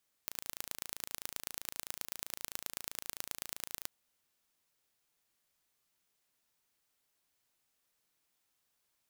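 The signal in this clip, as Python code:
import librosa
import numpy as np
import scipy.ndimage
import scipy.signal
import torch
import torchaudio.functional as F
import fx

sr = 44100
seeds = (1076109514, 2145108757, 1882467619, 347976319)

y = fx.impulse_train(sr, length_s=3.59, per_s=27.7, accent_every=3, level_db=-9.5)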